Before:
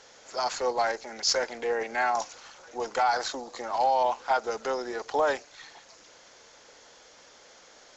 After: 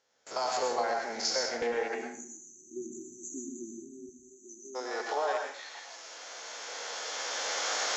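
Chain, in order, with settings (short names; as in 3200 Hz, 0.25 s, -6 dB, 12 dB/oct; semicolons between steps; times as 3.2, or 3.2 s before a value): stepped spectrum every 50 ms; recorder AGC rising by 9.5 dB/s; HPF 74 Hz 12 dB/oct, from 1.62 s 210 Hz, from 4.09 s 520 Hz; gate with hold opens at -39 dBFS; 1.94–4.75 spectral delete 390–5900 Hz; compressor, threshold -28 dBFS, peak gain reduction 6 dB; plate-style reverb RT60 0.52 s, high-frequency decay 0.95×, pre-delay 90 ms, DRR 1.5 dB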